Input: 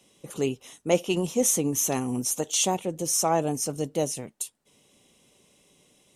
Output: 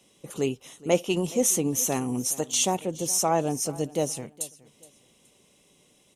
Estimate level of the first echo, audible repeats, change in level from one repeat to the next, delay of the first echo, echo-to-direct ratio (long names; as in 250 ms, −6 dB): −20.0 dB, 2, −11.0 dB, 420 ms, −19.5 dB